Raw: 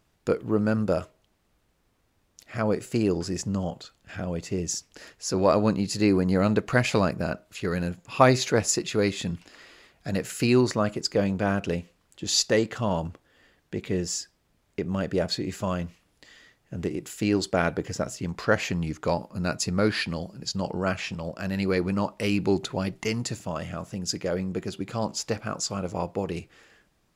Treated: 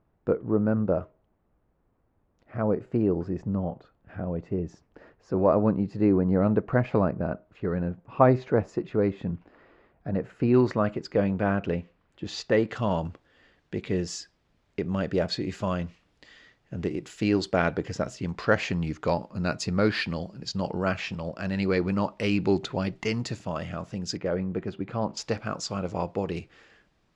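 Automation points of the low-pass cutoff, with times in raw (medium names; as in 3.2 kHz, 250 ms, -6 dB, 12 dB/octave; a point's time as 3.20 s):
1.1 kHz
from 10.54 s 2.3 kHz
from 12.69 s 4.8 kHz
from 24.17 s 2.1 kHz
from 25.17 s 5 kHz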